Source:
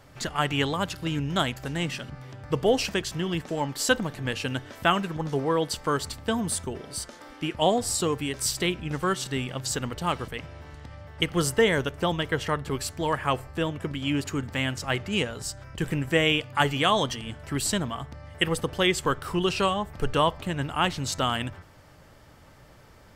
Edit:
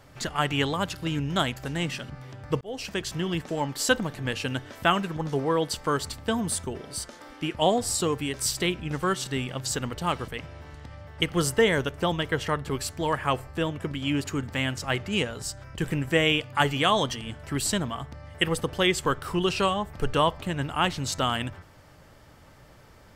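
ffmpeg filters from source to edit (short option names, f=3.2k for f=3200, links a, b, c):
-filter_complex "[0:a]asplit=2[a][b];[a]atrim=end=2.61,asetpts=PTS-STARTPTS,afade=t=out:st=2.606:d=0.004:c=hsin[c];[b]atrim=start=2.61,asetpts=PTS-STARTPTS,afade=t=in:d=0.5[d];[c][d]concat=n=2:v=0:a=1"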